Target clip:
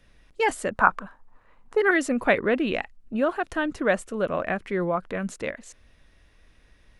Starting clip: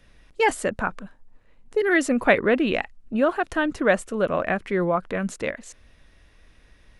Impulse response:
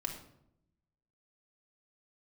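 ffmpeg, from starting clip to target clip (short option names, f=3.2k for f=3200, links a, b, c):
-filter_complex "[0:a]asettb=1/sr,asplit=3[a][b][c];[a]atrim=end=0.754[d];[b]atrim=start=0.75:end=1.91,asetpts=PTS-STARTPTS,afade=t=in:d=0.004:c=qsin,afade=t=out:st=1.156:d=0.004:c=qsin,equalizer=f=1.1k:t=o:w=1.4:g=14.5[e];[c]atrim=start=1.906[f];[d][e]acrossfade=d=0.004:c1=hsin:c2=qsin[g];[g][f]acrossfade=d=0.004:c1=qsin:c2=hsin,volume=-3dB"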